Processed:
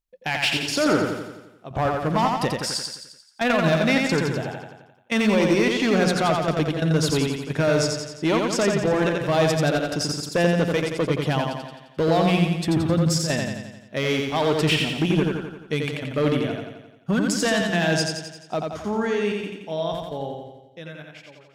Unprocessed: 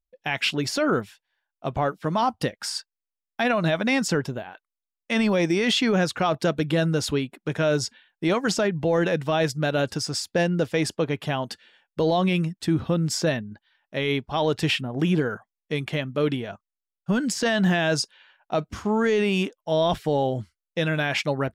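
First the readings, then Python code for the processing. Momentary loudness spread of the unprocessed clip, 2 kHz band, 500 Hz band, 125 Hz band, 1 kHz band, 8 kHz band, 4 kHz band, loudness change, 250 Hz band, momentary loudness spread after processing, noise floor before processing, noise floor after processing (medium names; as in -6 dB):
10 LU, +1.5 dB, +1.5 dB, +2.0 dB, +2.0 dB, +2.5 dB, +1.5 dB, +2.0 dB, +2.0 dB, 13 LU, under -85 dBFS, -51 dBFS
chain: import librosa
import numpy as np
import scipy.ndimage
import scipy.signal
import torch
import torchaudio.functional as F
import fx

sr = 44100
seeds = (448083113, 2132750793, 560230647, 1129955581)

y = fx.fade_out_tail(x, sr, length_s=4.7)
y = fx.hum_notches(y, sr, base_hz=60, count=3)
y = fx.step_gate(y, sr, bpm=132, pattern='xxxxx.xxxxx.xx.', floor_db=-12.0, edge_ms=4.5)
y = fx.clip_asym(y, sr, top_db=-20.0, bottom_db=-16.5)
y = fx.echo_feedback(y, sr, ms=87, feedback_pct=56, wet_db=-3.5)
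y = F.gain(torch.from_numpy(y), 2.0).numpy()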